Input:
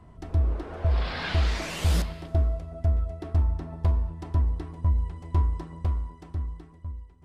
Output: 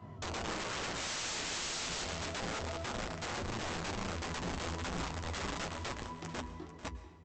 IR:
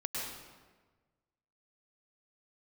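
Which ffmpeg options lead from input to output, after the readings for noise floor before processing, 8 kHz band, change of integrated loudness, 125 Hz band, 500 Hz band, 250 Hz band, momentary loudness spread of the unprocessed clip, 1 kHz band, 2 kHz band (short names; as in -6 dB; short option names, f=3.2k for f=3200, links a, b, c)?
-51 dBFS, +6.0 dB, -10.0 dB, -18.0 dB, -4.0 dB, -4.5 dB, 9 LU, -0.5 dB, -0.5 dB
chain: -filter_complex "[0:a]highpass=f=83:w=0.5412,highpass=f=83:w=1.3066,acompressor=threshold=-31dB:ratio=6,flanger=delay=19:depth=3.2:speed=1.6,aresample=16000,aeval=exprs='(mod(94.4*val(0)+1,2)-1)/94.4':c=same,aresample=44100,flanger=delay=8.2:depth=3.8:regen=-45:speed=0.32:shape=sinusoidal,aecho=1:1:443:0.188,asplit=2[a][b];[1:a]atrim=start_sample=2205,asetrate=43659,aresample=44100[c];[b][c]afir=irnorm=-1:irlink=0,volume=-15dB[d];[a][d]amix=inputs=2:normalize=0,volume=8.5dB"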